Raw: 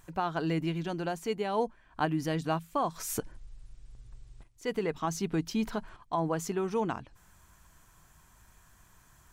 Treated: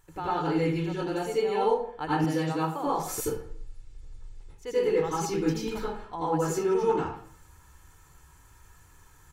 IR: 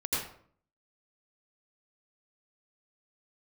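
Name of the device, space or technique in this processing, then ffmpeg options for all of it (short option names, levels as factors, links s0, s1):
microphone above a desk: -filter_complex "[0:a]aecho=1:1:2.3:0.51[s0];[1:a]atrim=start_sample=2205[s1];[s0][s1]afir=irnorm=-1:irlink=0,asettb=1/sr,asplit=3[s2][s3][s4];[s2]atrim=end=2.244[s5];[s3]atrim=start=2.24:end=2.87,asetpts=PTS-STARTPTS,afade=t=in:d=0.004:c=qsin,afade=t=out:st=0.626:d=0.004:c=qsin,highpass=140[s6];[s4]atrim=start=2.866[s7];[s5][s6]acrossfade=d=0.004:c1=hsin:c2=qsin[s8];[s8][s7]acrossfade=d=0.004:c1=qsin:c2=hsin,volume=0.631"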